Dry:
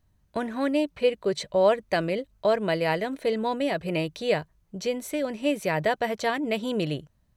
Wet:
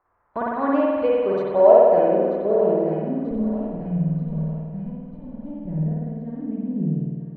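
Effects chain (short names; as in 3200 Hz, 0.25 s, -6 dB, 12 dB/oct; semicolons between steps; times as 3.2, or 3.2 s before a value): 3.31–5.67 minimum comb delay 1.3 ms; high shelf 2300 Hz +11 dB; band noise 270–2100 Hz -58 dBFS; low-pass sweep 1100 Hz -> 190 Hz, 1.07–3.59; gate -45 dBFS, range -15 dB; thinning echo 0.937 s, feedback 47%, high-pass 690 Hz, level -11 dB; spring tank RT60 1.7 s, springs 51 ms, chirp 45 ms, DRR -5 dB; gain -3.5 dB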